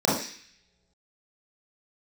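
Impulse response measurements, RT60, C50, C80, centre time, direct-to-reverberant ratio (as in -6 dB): no single decay rate, 2.0 dB, 7.5 dB, 51 ms, -7.0 dB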